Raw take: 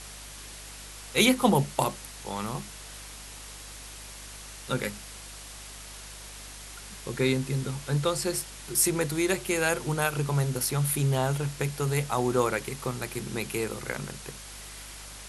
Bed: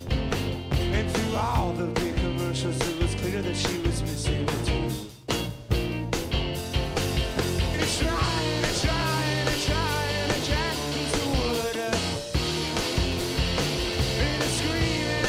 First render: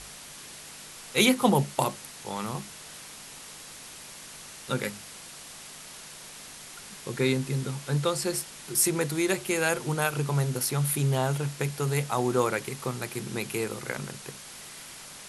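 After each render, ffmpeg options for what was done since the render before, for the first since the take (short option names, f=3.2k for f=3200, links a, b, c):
-af "bandreject=f=50:t=h:w=4,bandreject=f=100:t=h:w=4"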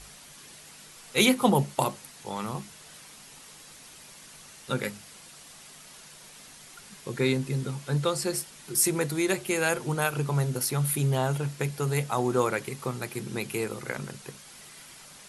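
-af "afftdn=nr=6:nf=-45"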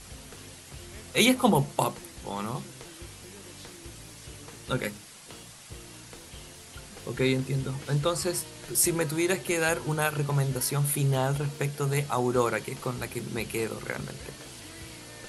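-filter_complex "[1:a]volume=-20.5dB[a];[0:a][a]amix=inputs=2:normalize=0"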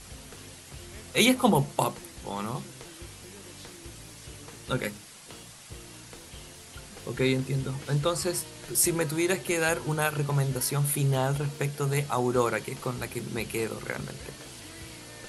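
-af anull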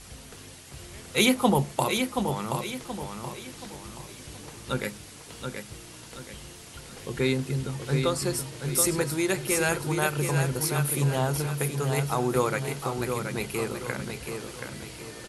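-af "aecho=1:1:727|1454|2181|2908|3635:0.501|0.195|0.0762|0.0297|0.0116"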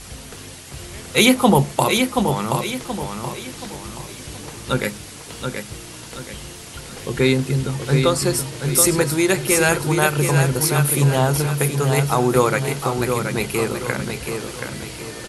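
-af "volume=8.5dB,alimiter=limit=-2dB:level=0:latency=1"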